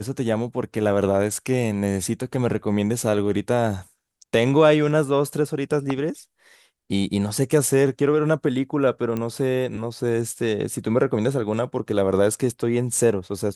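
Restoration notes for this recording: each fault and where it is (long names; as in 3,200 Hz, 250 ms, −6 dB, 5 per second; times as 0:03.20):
0:09.17: click −15 dBFS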